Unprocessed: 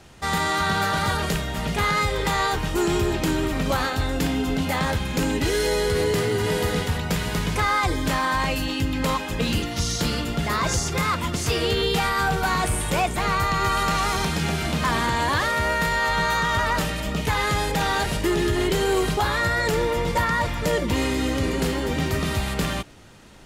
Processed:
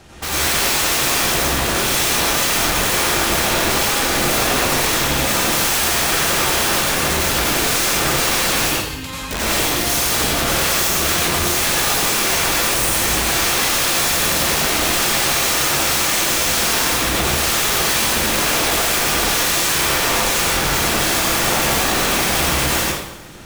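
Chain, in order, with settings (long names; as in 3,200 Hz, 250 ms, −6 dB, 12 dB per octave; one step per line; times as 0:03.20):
0:08.68–0:09.31: guitar amp tone stack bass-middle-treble 5-5-5
wrap-around overflow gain 22.5 dB
feedback echo with a high-pass in the loop 90 ms, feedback 75%, level −22 dB
dense smooth reverb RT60 0.82 s, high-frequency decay 0.8×, pre-delay 75 ms, DRR −5.5 dB
level +3.5 dB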